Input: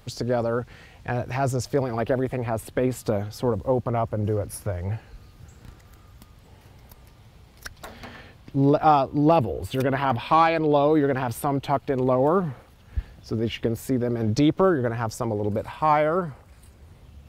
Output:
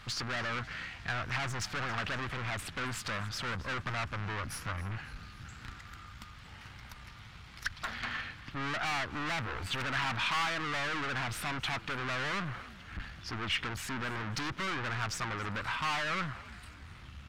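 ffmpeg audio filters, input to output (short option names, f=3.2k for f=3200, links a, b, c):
-filter_complex "[0:a]aeval=exprs='(tanh(63.1*val(0)+0.45)-tanh(0.45))/63.1':c=same,firequalizer=gain_entry='entry(210,0);entry(450,-8);entry(1300,12);entry(13000,-8)':delay=0.05:min_phase=1,asplit=2[a][b];[b]asplit=4[c][d][e][f];[c]adelay=272,afreqshift=55,volume=-19dB[g];[d]adelay=544,afreqshift=110,volume=-25.6dB[h];[e]adelay=816,afreqshift=165,volume=-32.1dB[i];[f]adelay=1088,afreqshift=220,volume=-38.7dB[j];[g][h][i][j]amix=inputs=4:normalize=0[k];[a][k]amix=inputs=2:normalize=0"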